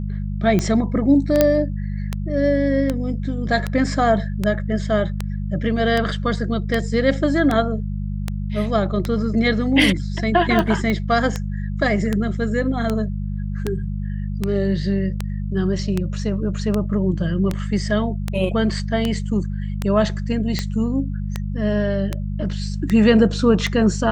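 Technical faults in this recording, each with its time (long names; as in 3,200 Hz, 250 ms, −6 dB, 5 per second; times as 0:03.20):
mains hum 50 Hz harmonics 4 −25 dBFS
scratch tick 78 rpm −8 dBFS
0:01.41: click −1 dBFS
0:10.90: click −11 dBFS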